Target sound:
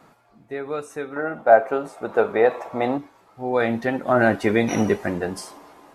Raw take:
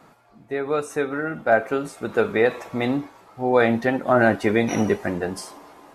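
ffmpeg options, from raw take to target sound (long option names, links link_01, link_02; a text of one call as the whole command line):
ffmpeg -i in.wav -filter_complex "[0:a]asettb=1/sr,asplit=3[link_01][link_02][link_03];[link_01]atrim=end=1.164[link_04];[link_02]atrim=start=1.16:end=2.98,asetpts=PTS-STARTPTS,afade=type=in:duration=0.004:curve=qsin,afade=type=out:start_time=1.816:duration=0.004:curve=qsin,equalizer=frequency=740:width=0.69:gain=14[link_05];[link_03]atrim=start=2.976[link_06];[link_04][link_05]acrossfade=duration=0.004:curve1=hsin:curve2=qsin[link_07];[link_07][link_06]acrossfade=duration=0.004:curve1=qsin:curve2=hsin,dynaudnorm=framelen=370:gausssize=7:maxgain=4dB,volume=-1dB" out.wav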